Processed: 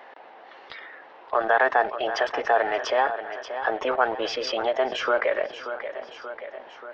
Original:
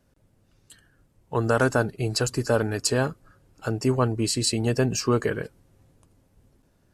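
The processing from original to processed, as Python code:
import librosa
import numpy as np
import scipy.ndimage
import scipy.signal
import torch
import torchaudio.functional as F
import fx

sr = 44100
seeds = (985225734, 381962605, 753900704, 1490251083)

p1 = scipy.signal.sosfilt(scipy.signal.butter(4, 520.0, 'highpass', fs=sr, output='sos'), x)
p2 = fx.formant_shift(p1, sr, semitones=3)
p3 = np.where(np.abs(p2) >= 10.0 ** (-39.0 / 20.0), p2, 0.0)
p4 = p2 + F.gain(torch.from_numpy(p3), -3.5).numpy()
p5 = scipy.ndimage.gaussian_filter1d(p4, 3.1, mode='constant')
p6 = p5 + fx.echo_feedback(p5, sr, ms=582, feedback_pct=40, wet_db=-20, dry=0)
y = fx.env_flatten(p6, sr, amount_pct=50)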